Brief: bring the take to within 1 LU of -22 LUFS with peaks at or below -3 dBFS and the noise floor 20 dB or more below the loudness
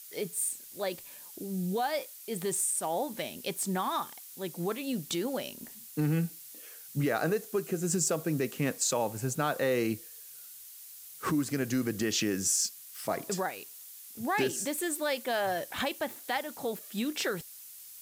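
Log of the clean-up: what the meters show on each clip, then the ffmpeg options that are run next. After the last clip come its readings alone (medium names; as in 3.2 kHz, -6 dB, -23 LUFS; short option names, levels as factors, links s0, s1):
noise floor -49 dBFS; noise floor target -52 dBFS; loudness -32.0 LUFS; peak level -16.0 dBFS; loudness target -22.0 LUFS
-> -af "afftdn=nr=6:nf=-49"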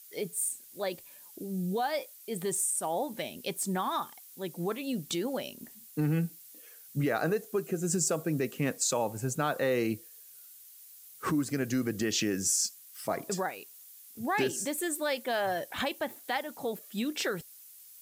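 noise floor -53 dBFS; loudness -32.0 LUFS; peak level -16.0 dBFS; loudness target -22.0 LUFS
-> -af "volume=3.16"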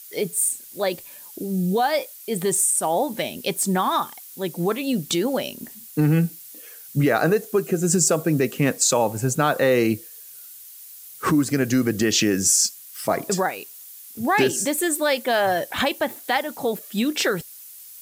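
loudness -22.0 LUFS; peak level -6.0 dBFS; noise floor -43 dBFS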